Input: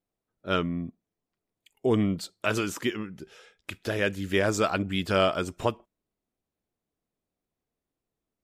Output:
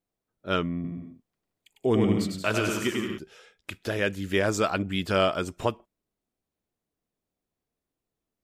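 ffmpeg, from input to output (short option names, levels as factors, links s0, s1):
-filter_complex "[0:a]asettb=1/sr,asplit=3[s0][s1][s2];[s0]atrim=end=0.744[s3];[s1]atrim=start=0.74:end=3.18,asetpts=PTS-STARTPTS,afade=t=in:d=0.004:c=qsin,afade=t=out:st=2.436:d=0.004:c=qsin,aecho=1:1:100|175|231.2|273.4|305.1:0.631|0.398|0.251|0.158|0.1,atrim=end_sample=107604[s4];[s2]atrim=start=3.176[s5];[s3][s4]acrossfade=d=0.004:c1=hsin:c2=qsin[s6];[s6][s5]acrossfade=d=0.004:c1=qsin:c2=hsin"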